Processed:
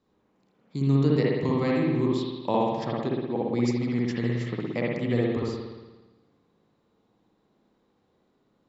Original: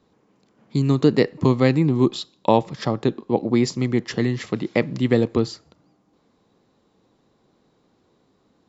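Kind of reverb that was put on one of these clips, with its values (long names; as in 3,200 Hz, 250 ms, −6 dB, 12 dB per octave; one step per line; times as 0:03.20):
spring reverb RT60 1.2 s, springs 58 ms, chirp 25 ms, DRR −4 dB
level −11 dB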